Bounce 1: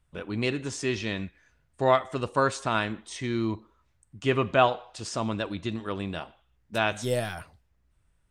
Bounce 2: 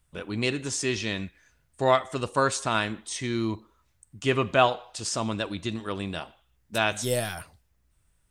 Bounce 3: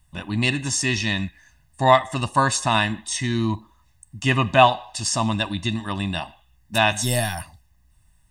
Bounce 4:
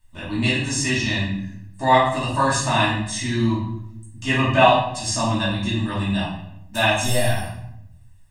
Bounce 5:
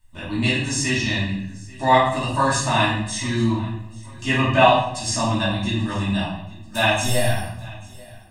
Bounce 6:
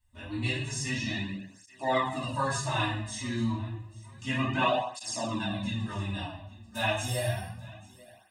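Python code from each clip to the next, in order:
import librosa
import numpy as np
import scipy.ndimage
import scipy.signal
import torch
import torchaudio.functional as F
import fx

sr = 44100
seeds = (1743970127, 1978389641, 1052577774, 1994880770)

y1 = fx.high_shelf(x, sr, hz=5000.0, db=11.0)
y2 = y1 + 0.9 * np.pad(y1, (int(1.1 * sr / 1000.0), 0))[:len(y1)]
y2 = y2 * 10.0 ** (4.0 / 20.0)
y3 = fx.room_shoebox(y2, sr, seeds[0], volume_m3=190.0, walls='mixed', distance_m=2.7)
y3 = y3 * 10.0 ** (-8.5 / 20.0)
y4 = fx.echo_feedback(y3, sr, ms=837, feedback_pct=42, wet_db=-22)
y5 = fx.flanger_cancel(y4, sr, hz=0.3, depth_ms=6.5)
y5 = y5 * 10.0 ** (-7.5 / 20.0)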